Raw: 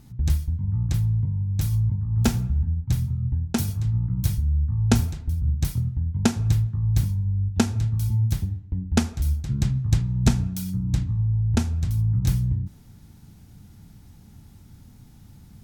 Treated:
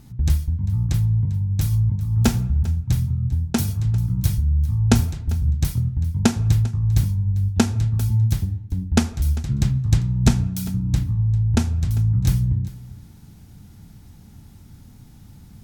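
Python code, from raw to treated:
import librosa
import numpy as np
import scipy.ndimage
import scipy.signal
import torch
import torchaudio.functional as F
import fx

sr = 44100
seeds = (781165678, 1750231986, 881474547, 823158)

y = x + 10.0 ** (-18.5 / 20.0) * np.pad(x, (int(397 * sr / 1000.0), 0))[:len(x)]
y = y * librosa.db_to_amplitude(3.0)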